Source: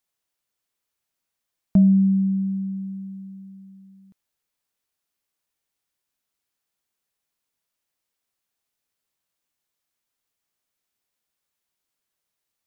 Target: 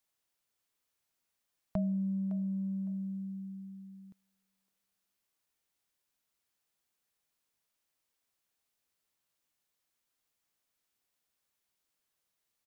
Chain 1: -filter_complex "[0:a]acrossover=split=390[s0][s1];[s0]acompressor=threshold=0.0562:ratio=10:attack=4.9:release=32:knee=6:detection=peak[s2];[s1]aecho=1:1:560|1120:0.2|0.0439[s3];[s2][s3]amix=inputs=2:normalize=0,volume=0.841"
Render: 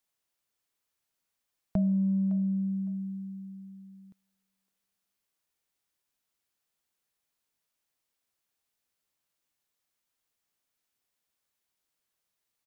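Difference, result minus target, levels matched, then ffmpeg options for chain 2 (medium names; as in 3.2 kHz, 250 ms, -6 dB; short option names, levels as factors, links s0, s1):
compression: peak gain reduction -8 dB
-filter_complex "[0:a]acrossover=split=390[s0][s1];[s0]acompressor=threshold=0.02:ratio=10:attack=4.9:release=32:knee=6:detection=peak[s2];[s1]aecho=1:1:560|1120:0.2|0.0439[s3];[s2][s3]amix=inputs=2:normalize=0,volume=0.841"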